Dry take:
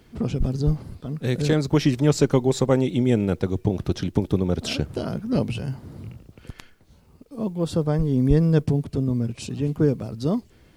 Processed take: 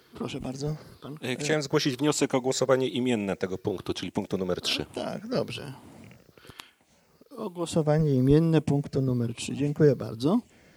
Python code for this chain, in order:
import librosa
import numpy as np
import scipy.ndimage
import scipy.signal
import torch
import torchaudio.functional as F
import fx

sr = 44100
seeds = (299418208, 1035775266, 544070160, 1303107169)

y = fx.spec_ripple(x, sr, per_octave=0.59, drift_hz=-1.1, depth_db=7)
y = fx.highpass(y, sr, hz=fx.steps((0.0, 650.0), (7.68, 220.0)), slope=6)
y = y * 10.0 ** (1.0 / 20.0)